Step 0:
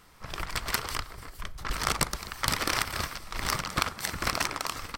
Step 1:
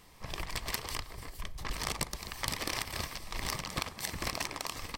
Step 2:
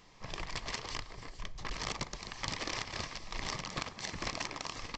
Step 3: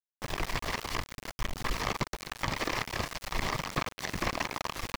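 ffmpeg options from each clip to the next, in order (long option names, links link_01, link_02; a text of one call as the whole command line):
ffmpeg -i in.wav -af "equalizer=frequency=1400:width=5.3:gain=-14,acompressor=threshold=-35dB:ratio=2" out.wav
ffmpeg -i in.wav -af "equalizer=frequency=65:width=3.2:gain=-12.5,aresample=16000,aeval=exprs='clip(val(0),-1,0.0282)':channel_layout=same,aresample=44100,volume=-1dB" out.wav
ffmpeg -i in.wav -filter_complex "[0:a]aeval=exprs='val(0)*gte(abs(val(0)),0.01)':channel_layout=same,acrossover=split=2600[link_01][link_02];[link_02]acompressor=threshold=-45dB:ratio=4:attack=1:release=60[link_03];[link_01][link_03]amix=inputs=2:normalize=0,volume=8.5dB" out.wav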